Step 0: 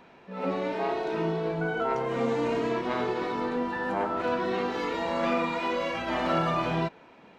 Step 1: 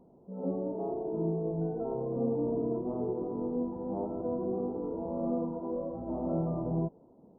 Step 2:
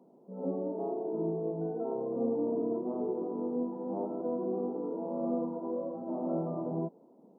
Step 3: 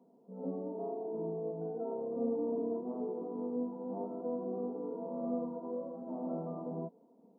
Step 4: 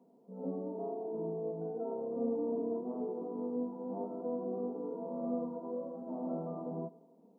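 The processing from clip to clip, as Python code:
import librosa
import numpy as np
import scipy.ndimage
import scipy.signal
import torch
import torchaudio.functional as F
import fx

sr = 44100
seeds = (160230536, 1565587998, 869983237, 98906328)

y1 = scipy.ndimage.gaussian_filter1d(x, 14.0, mode='constant')
y2 = scipy.signal.sosfilt(scipy.signal.butter(4, 190.0, 'highpass', fs=sr, output='sos'), y1)
y3 = y2 + 0.53 * np.pad(y2, (int(4.3 * sr / 1000.0), 0))[:len(y2)]
y3 = y3 * librosa.db_to_amplitude(-6.0)
y4 = fx.echo_feedback(y3, sr, ms=95, feedback_pct=59, wet_db=-22.0)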